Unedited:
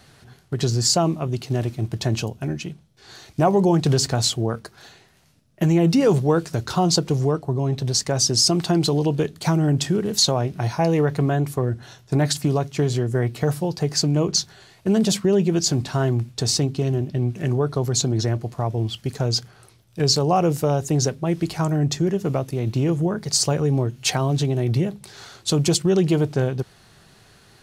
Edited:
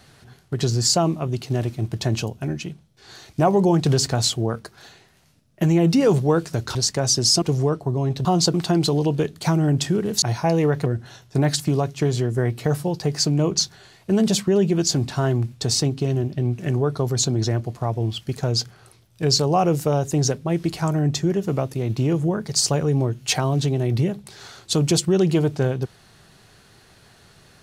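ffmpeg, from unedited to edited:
-filter_complex "[0:a]asplit=7[a][b][c][d][e][f][g];[a]atrim=end=6.752[h];[b]atrim=start=7.868:end=8.542[i];[c]atrim=start=7.038:end=7.872[j];[d]atrim=start=6.748:end=7.042[k];[e]atrim=start=8.538:end=10.222[l];[f]atrim=start=10.568:end=11.212[m];[g]atrim=start=11.628[n];[h][i]acrossfade=d=0.004:c1=hsin:c2=hsin[o];[o][j]acrossfade=d=0.004:c1=hsin:c2=hsin[p];[p][k]acrossfade=d=0.004:c1=hsin:c2=hsin[q];[q][l]acrossfade=d=0.004:c1=hsin:c2=hsin[r];[r][m]acrossfade=d=0.004:c1=hsin:c2=hsin[s];[s][n]acrossfade=d=0.004:c1=hsin:c2=hsin"

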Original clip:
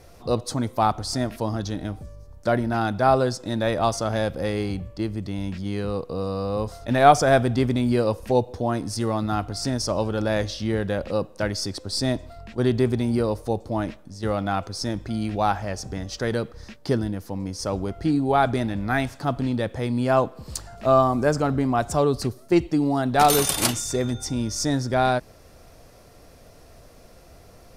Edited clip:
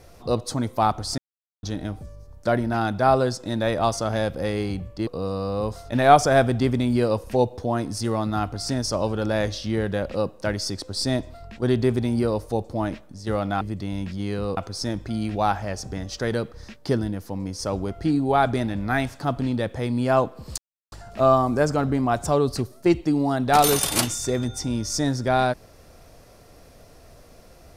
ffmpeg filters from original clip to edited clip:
-filter_complex "[0:a]asplit=7[a][b][c][d][e][f][g];[a]atrim=end=1.18,asetpts=PTS-STARTPTS,afade=t=out:st=1.176:d=0.004:c=hsin[h];[b]atrim=start=1.18:end=1.63,asetpts=PTS-STARTPTS,volume=0[i];[c]atrim=start=1.63:end=5.072,asetpts=PTS-STARTPTS,afade=t=in:d=0.004:c=hsin[j];[d]atrim=start=6.028:end=14.572[k];[e]atrim=start=5.068:end=6.032[l];[f]atrim=start=14.568:end=20.58,asetpts=PTS-STARTPTS,afade=t=out:st=6.008:d=0.004:c=hsin,apad=pad_dur=0.34[m];[g]atrim=start=20.58,asetpts=PTS-STARTPTS,afade=t=in:d=0.004:c=hsin[n];[h][i][j]concat=n=3:v=0:a=1[o];[o][k]acrossfade=d=0.004:c1=hsin:c2=hsin[p];[p][l]acrossfade=d=0.004:c1=hsin:c2=hsin[q];[m][n]concat=n=2:v=0:a=1[r];[q][r]acrossfade=d=0.004:c1=hsin:c2=hsin"

